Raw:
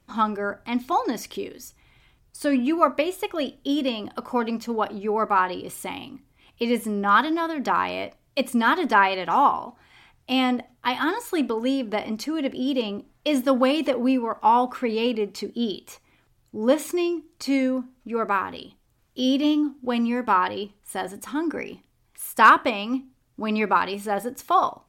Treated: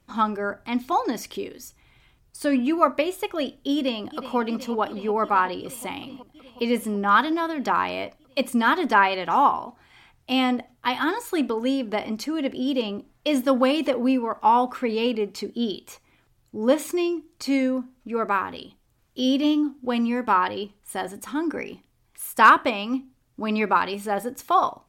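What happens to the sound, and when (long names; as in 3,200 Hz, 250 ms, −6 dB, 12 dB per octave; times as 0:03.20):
0:03.75–0:04.37: delay throw 370 ms, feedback 80%, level −13 dB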